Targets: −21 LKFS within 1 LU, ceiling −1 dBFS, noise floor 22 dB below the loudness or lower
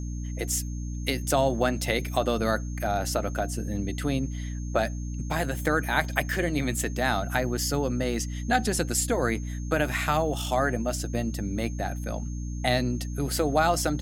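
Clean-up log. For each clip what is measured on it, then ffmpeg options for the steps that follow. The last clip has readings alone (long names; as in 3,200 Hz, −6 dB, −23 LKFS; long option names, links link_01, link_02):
mains hum 60 Hz; hum harmonics up to 300 Hz; level of the hum −30 dBFS; interfering tone 6,400 Hz; level of the tone −48 dBFS; integrated loudness −27.5 LKFS; sample peak −7.5 dBFS; target loudness −21.0 LKFS
→ -af "bandreject=frequency=60:width_type=h:width=4,bandreject=frequency=120:width_type=h:width=4,bandreject=frequency=180:width_type=h:width=4,bandreject=frequency=240:width_type=h:width=4,bandreject=frequency=300:width_type=h:width=4"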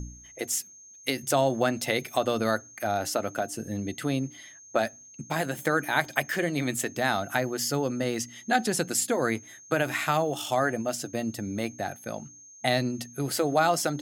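mains hum none found; interfering tone 6,400 Hz; level of the tone −48 dBFS
→ -af "bandreject=frequency=6400:width=30"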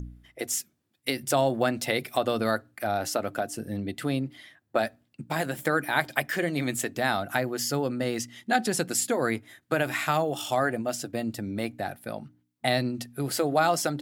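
interfering tone none found; integrated loudness −28.5 LKFS; sample peak −7.5 dBFS; target loudness −21.0 LKFS
→ -af "volume=7.5dB,alimiter=limit=-1dB:level=0:latency=1"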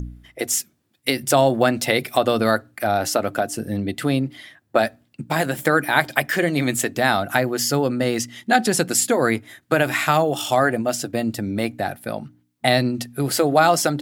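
integrated loudness −21.0 LKFS; sample peak −1.0 dBFS; background noise floor −67 dBFS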